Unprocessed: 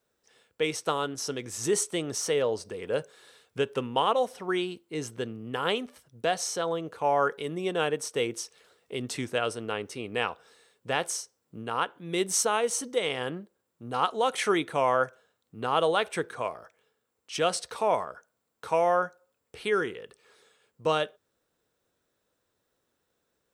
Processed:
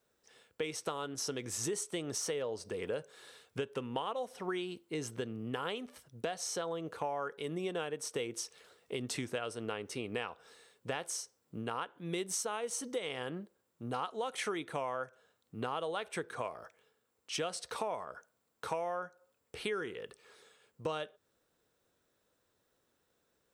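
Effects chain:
downward compressor 6 to 1, threshold −34 dBFS, peak gain reduction 14 dB

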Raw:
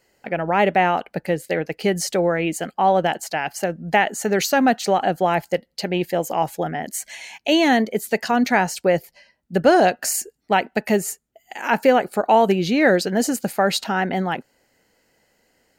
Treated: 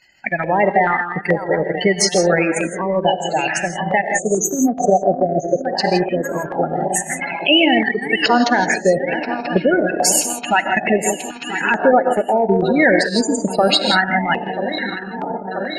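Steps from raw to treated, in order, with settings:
feedback delay that plays each chunk backwards 492 ms, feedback 85%, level −12 dB
gate on every frequency bin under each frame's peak −15 dB strong
parametric band 2,900 Hz +14 dB 2.1 octaves
0:04.01–0:05.62: time-frequency box erased 760–6,000 Hz
high-shelf EQ 9,900 Hz +7 dB, from 0:12.38 +12 dB
reverb whose tail is shaped and stops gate 190 ms rising, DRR 5 dB
transient designer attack +3 dB, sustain −7 dB
boost into a limiter +4 dB
notch on a step sequencer 2.3 Hz 460–3,200 Hz
level −1.5 dB

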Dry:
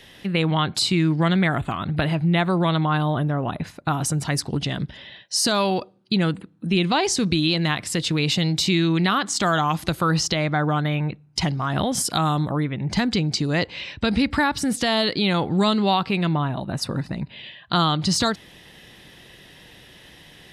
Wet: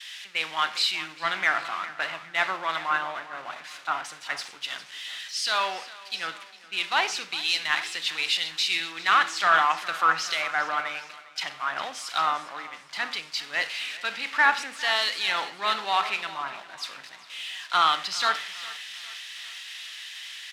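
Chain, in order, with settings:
spike at every zero crossing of −16 dBFS
high-pass filter 1,400 Hz 12 dB per octave
downward expander −34 dBFS
low-pass filter 2,400 Hz 12 dB per octave
in parallel at −5 dB: soft clipping −24.5 dBFS, distortion −12 dB
on the sum: repeating echo 407 ms, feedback 57%, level −11.5 dB
convolution reverb RT60 0.60 s, pre-delay 31 ms, DRR 11 dB
multiband upward and downward expander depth 100%

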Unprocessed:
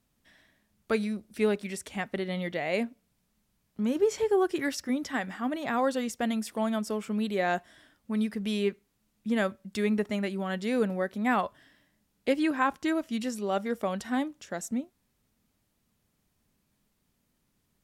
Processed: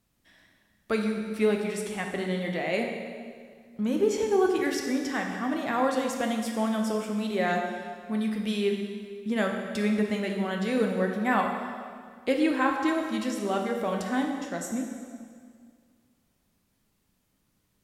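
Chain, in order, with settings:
dense smooth reverb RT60 2 s, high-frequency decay 0.85×, DRR 1.5 dB

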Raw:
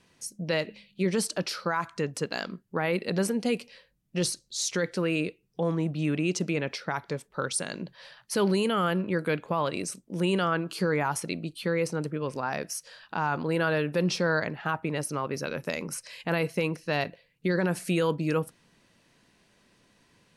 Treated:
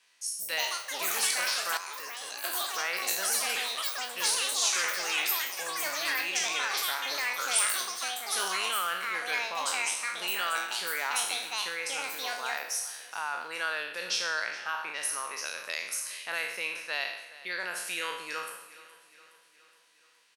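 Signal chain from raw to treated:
peak hold with a decay on every bin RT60 0.80 s
on a send: repeating echo 418 ms, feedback 56%, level −18 dB
on the sum: delay with pitch and tempo change per echo 245 ms, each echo +7 semitones, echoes 3
Bessel high-pass filter 1,600 Hz, order 2
0:01.77–0:02.44: output level in coarse steps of 20 dB

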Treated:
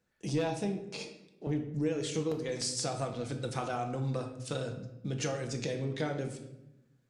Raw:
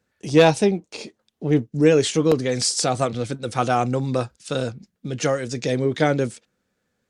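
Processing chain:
0:01.02–0:01.47: high-pass filter 390 Hz
downward compressor 4 to 1, threshold −26 dBFS, peak gain reduction 14 dB
convolution reverb RT60 0.90 s, pre-delay 6 ms, DRR 4.5 dB
level −7 dB

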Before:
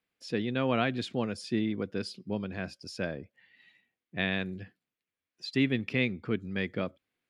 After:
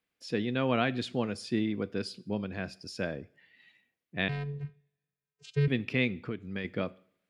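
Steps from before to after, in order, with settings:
0:04.28–0:05.68: channel vocoder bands 8, square 143 Hz
0:06.18–0:06.65: downward compressor, threshold −32 dBFS, peak gain reduction 8.5 dB
coupled-rooms reverb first 0.53 s, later 1.7 s, from −26 dB, DRR 17 dB

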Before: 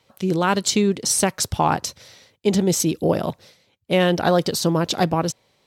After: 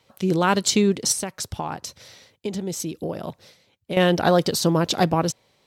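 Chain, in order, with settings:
0:01.12–0:03.97: downward compressor 3 to 1, threshold −29 dBFS, peak gain reduction 12 dB

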